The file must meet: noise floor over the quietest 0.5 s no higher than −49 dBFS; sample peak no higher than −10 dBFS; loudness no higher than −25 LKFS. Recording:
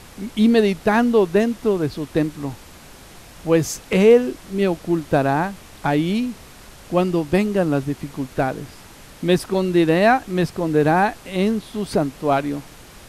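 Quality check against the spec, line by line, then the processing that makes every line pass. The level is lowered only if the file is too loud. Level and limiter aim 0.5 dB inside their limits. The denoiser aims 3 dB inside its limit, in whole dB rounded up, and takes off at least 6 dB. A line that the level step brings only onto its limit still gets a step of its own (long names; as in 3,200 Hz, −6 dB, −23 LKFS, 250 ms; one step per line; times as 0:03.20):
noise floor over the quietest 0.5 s −43 dBFS: out of spec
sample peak −2.5 dBFS: out of spec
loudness −20.0 LKFS: out of spec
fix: broadband denoise 6 dB, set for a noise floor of −43 dBFS
level −5.5 dB
brickwall limiter −10.5 dBFS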